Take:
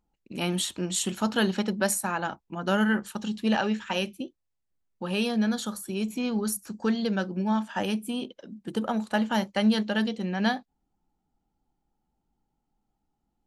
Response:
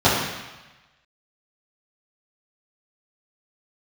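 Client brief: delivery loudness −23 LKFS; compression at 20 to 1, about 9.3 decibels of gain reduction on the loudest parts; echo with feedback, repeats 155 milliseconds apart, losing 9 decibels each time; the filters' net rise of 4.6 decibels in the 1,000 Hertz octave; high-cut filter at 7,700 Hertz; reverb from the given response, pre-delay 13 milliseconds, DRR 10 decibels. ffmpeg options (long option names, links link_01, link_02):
-filter_complex "[0:a]lowpass=7700,equalizer=frequency=1000:width_type=o:gain=6,acompressor=threshold=-27dB:ratio=20,aecho=1:1:155|310|465|620:0.355|0.124|0.0435|0.0152,asplit=2[link_01][link_02];[1:a]atrim=start_sample=2205,adelay=13[link_03];[link_02][link_03]afir=irnorm=-1:irlink=0,volume=-33dB[link_04];[link_01][link_04]amix=inputs=2:normalize=0,volume=9dB"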